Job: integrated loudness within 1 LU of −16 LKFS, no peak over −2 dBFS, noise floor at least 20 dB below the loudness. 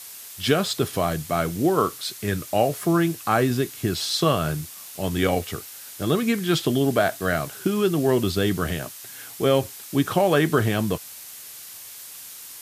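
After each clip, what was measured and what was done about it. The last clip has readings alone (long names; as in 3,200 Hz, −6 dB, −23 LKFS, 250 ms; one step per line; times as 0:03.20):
background noise floor −41 dBFS; target noise floor −44 dBFS; integrated loudness −23.5 LKFS; sample peak −6.0 dBFS; target loudness −16.0 LKFS
→ noise reduction from a noise print 6 dB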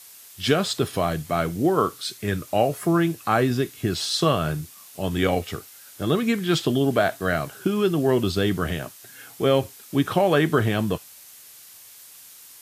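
background noise floor −47 dBFS; integrated loudness −23.5 LKFS; sample peak −6.0 dBFS; target loudness −16.0 LKFS
→ level +7.5 dB
brickwall limiter −2 dBFS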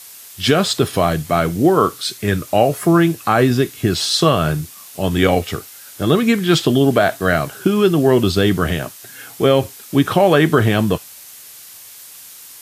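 integrated loudness −16.5 LKFS; sample peak −2.0 dBFS; background noise floor −39 dBFS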